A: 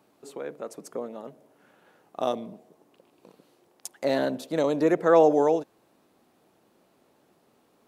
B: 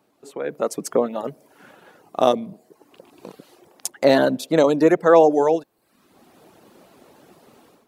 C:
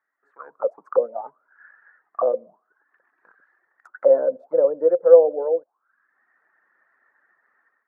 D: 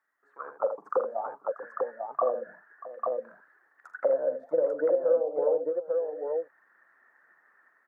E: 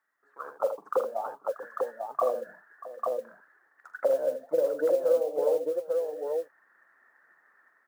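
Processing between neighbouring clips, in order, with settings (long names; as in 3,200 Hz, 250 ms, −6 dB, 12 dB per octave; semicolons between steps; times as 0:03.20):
reverb reduction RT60 0.67 s; automatic gain control gain up to 16 dB; level −1 dB
envelope filter 520–1,900 Hz, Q 18, down, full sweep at −17.5 dBFS; high shelf with overshoot 2,100 Hz −13 dB, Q 3; level +8 dB
downward compressor 8 to 1, threshold −23 dBFS, peak gain reduction 17 dB; on a send: multi-tap delay 43/81/636/846 ms −12.5/−9/−16/−3.5 dB
noise that follows the level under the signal 29 dB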